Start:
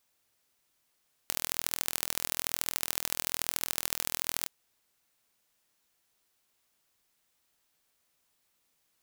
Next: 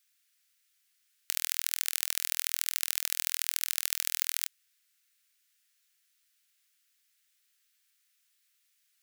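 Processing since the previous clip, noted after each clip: inverse Chebyshev high-pass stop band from 760 Hz, stop band 40 dB; trim +2 dB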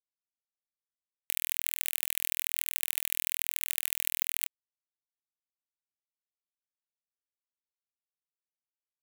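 static phaser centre 1.4 kHz, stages 6; bit crusher 7-bit; trim +2 dB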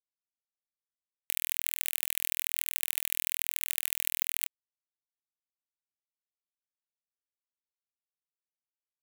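no audible change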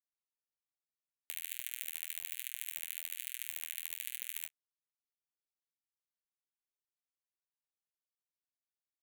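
flange 1.2 Hz, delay 7 ms, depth 7.6 ms, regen -19%; trim -6.5 dB

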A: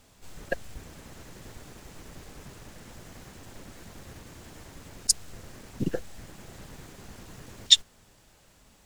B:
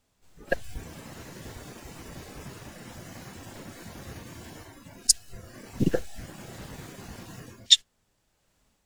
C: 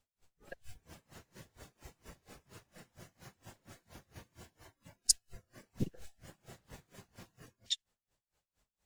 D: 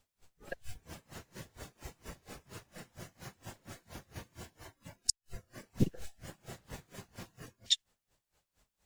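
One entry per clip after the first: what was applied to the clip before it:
level rider gain up to 5 dB; spectral noise reduction 14 dB
peaking EQ 270 Hz -4.5 dB 0.83 oct; logarithmic tremolo 4.3 Hz, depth 28 dB; trim -6.5 dB
inverted gate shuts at -18 dBFS, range -42 dB; trim +6.5 dB

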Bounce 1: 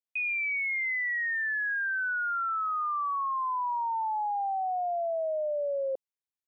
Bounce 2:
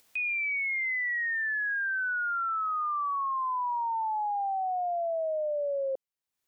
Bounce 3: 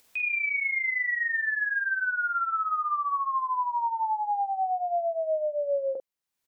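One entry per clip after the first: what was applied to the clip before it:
upward compressor, threshold -41 dBFS
early reflections 16 ms -12 dB, 46 ms -5.5 dB; trim +1 dB

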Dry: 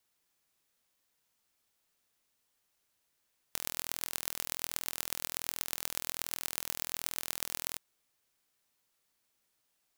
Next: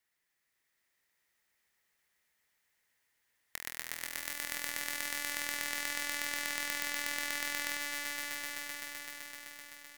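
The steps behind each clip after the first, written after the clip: peaking EQ 1.9 kHz +14 dB 0.48 oct; on a send: echo with a slow build-up 128 ms, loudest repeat 5, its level -6.5 dB; on the sum: trim -6 dB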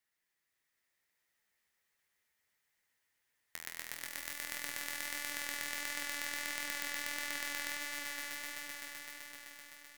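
flange 1.5 Hz, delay 6.5 ms, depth 7.2 ms, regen +57%; trim +1 dB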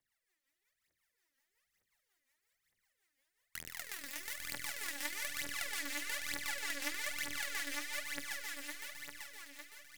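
phaser 1.1 Hz, delay 3.9 ms, feedback 80%; rotary cabinet horn 5.5 Hz; trim -2 dB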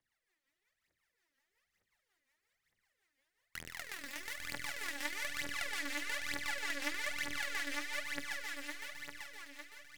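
low-pass 3.7 kHz 6 dB/octave; trim +3 dB

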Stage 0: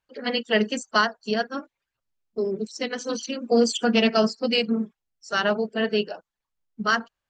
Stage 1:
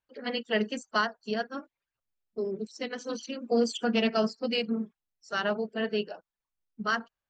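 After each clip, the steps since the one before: treble shelf 6.9 kHz -8.5 dB; trim -6 dB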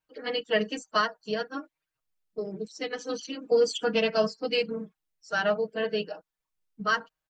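comb 6.4 ms, depth 81%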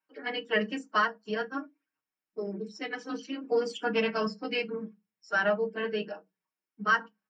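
reverberation RT60 0.15 s, pre-delay 3 ms, DRR 7.5 dB; trim -7.5 dB

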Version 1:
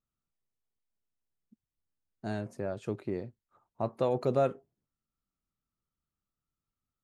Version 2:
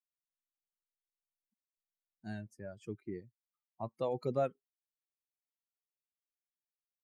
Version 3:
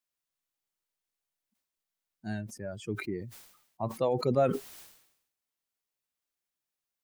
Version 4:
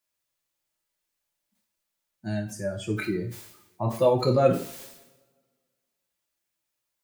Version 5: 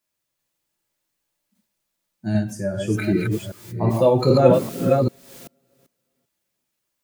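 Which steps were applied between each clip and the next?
expander on every frequency bin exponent 2; trim -3.5 dB
decay stretcher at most 73 dB/s; trim +6.5 dB
two-slope reverb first 0.41 s, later 1.7 s, from -26 dB, DRR -0.5 dB; trim +3.5 dB
chunks repeated in reverse 391 ms, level -2.5 dB; peaking EQ 190 Hz +6 dB 2.4 oct; trim +2 dB

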